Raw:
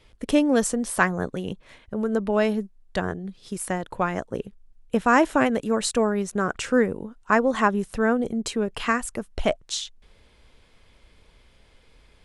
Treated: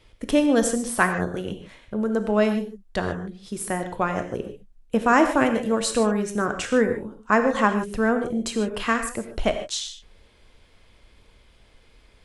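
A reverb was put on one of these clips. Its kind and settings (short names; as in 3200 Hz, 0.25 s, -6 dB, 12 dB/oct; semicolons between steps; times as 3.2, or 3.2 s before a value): non-linear reverb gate 0.17 s flat, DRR 6.5 dB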